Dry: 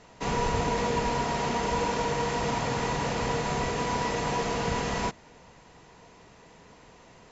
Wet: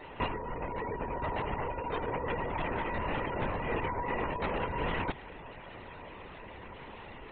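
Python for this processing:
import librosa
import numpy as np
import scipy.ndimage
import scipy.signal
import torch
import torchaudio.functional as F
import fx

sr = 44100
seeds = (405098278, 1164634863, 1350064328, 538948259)

y = fx.spec_gate(x, sr, threshold_db=-20, keep='strong')
y = fx.high_shelf(y, sr, hz=2100.0, db=7.0)
y = fx.over_compress(y, sr, threshold_db=-32.0, ratio=-0.5)
y = fx.lpc_vocoder(y, sr, seeds[0], excitation='whisper', order=16)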